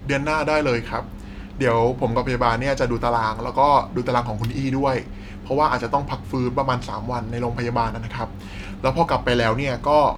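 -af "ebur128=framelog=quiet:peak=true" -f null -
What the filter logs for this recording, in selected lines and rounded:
Integrated loudness:
  I:         -22.0 LUFS
  Threshold: -32.3 LUFS
Loudness range:
  LRA:         3.4 LU
  Threshold: -42.4 LUFS
  LRA low:   -24.3 LUFS
  LRA high:  -20.9 LUFS
True peak:
  Peak:       -4.2 dBFS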